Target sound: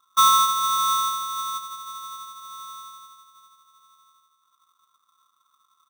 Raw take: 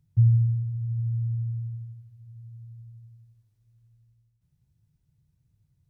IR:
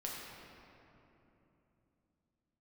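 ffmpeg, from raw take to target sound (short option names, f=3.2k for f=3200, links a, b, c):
-filter_complex "[0:a]asplit=3[a][b][c];[a]afade=t=out:st=1.57:d=0.02[d];[b]asplit=2[e][f];[f]adelay=20,volume=-3dB[g];[e][g]amix=inputs=2:normalize=0,afade=t=in:st=1.57:d=0.02,afade=t=out:st=2.4:d=0.02[h];[c]afade=t=in:st=2.4:d=0.02[i];[d][h][i]amix=inputs=3:normalize=0,asplit=2[j][k];[k]adelay=419.8,volume=-19dB,highshelf=f=4k:g=-9.45[l];[j][l]amix=inputs=2:normalize=0,asplit=2[m][n];[1:a]atrim=start_sample=2205[o];[n][o]afir=irnorm=-1:irlink=0,volume=-10.5dB[p];[m][p]amix=inputs=2:normalize=0,aeval=exprs='val(0)*sgn(sin(2*PI*1200*n/s))':c=same"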